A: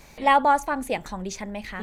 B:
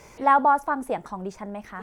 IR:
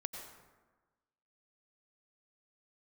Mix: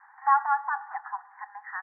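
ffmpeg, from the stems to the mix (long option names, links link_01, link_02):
-filter_complex "[0:a]aemphasis=mode=production:type=75fm,asoftclip=type=tanh:threshold=-21dB,volume=1.5dB,asplit=2[link_01][link_02];[link_02]volume=-12dB[link_03];[1:a]adelay=3.5,volume=-8.5dB[link_04];[2:a]atrim=start_sample=2205[link_05];[link_03][link_05]afir=irnorm=-1:irlink=0[link_06];[link_01][link_04][link_06]amix=inputs=3:normalize=0,asuperpass=centerf=1200:order=20:qfactor=1.1"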